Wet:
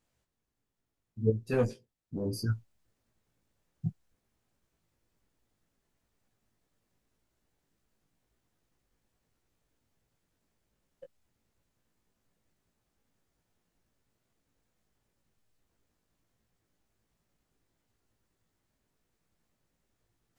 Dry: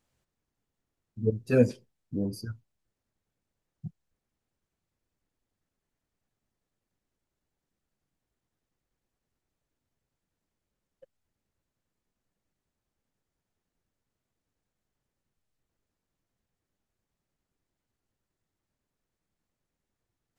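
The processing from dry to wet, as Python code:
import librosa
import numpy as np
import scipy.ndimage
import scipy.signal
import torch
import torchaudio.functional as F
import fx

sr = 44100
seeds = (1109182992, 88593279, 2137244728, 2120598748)

y = fx.rider(x, sr, range_db=10, speed_s=0.5)
y = fx.tube_stage(y, sr, drive_db=21.0, bias=0.45, at=(1.53, 2.26))
y = fx.doubler(y, sr, ms=18.0, db=-5)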